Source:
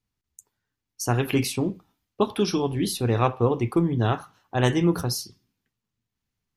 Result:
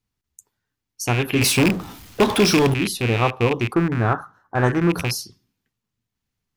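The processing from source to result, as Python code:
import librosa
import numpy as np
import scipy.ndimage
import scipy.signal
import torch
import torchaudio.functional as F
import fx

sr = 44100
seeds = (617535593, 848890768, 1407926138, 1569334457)

y = fx.rattle_buzz(x, sr, strikes_db=-28.0, level_db=-16.0)
y = fx.power_curve(y, sr, exponent=0.5, at=(1.41, 2.74))
y = fx.high_shelf_res(y, sr, hz=2000.0, db=-9.5, q=3.0, at=(3.73, 4.89), fade=0.02)
y = y * librosa.db_to_amplitude(2.0)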